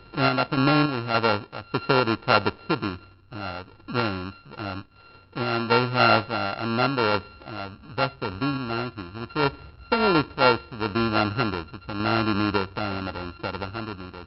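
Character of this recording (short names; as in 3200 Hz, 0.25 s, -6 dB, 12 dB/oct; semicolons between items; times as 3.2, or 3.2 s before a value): a buzz of ramps at a fixed pitch in blocks of 32 samples; random-step tremolo 3.5 Hz; MP3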